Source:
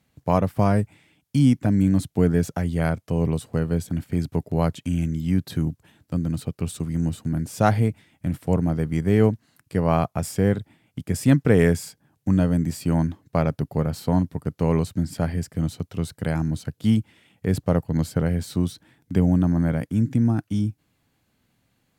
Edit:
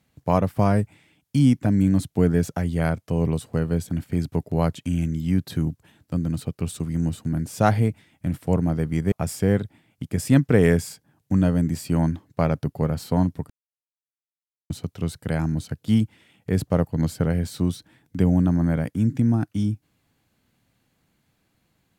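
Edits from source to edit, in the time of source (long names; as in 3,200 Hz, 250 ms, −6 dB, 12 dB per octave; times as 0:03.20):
0:09.12–0:10.08: remove
0:14.46–0:15.66: silence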